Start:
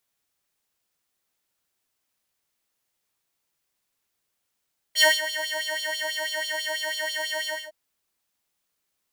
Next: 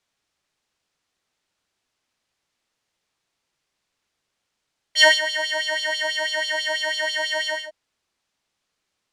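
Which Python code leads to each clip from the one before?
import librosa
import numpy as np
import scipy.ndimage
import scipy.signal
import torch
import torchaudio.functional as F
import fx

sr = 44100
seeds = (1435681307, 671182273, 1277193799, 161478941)

y = scipy.signal.sosfilt(scipy.signal.butter(2, 6100.0, 'lowpass', fs=sr, output='sos'), x)
y = y * 10.0 ** (5.0 / 20.0)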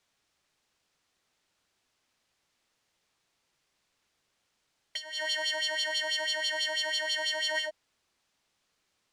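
y = fx.over_compress(x, sr, threshold_db=-29.0, ratio=-1.0)
y = y * 10.0 ** (-4.0 / 20.0)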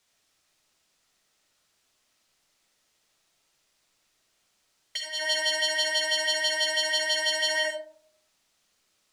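y = fx.high_shelf(x, sr, hz=4100.0, db=8.0)
y = fx.rev_freeverb(y, sr, rt60_s=0.59, hf_ratio=0.3, predelay_ms=25, drr_db=1.5)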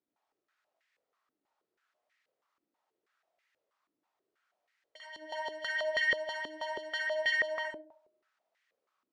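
y = fx.filter_held_bandpass(x, sr, hz=6.2, low_hz=300.0, high_hz=1900.0)
y = y * 10.0 ** (4.0 / 20.0)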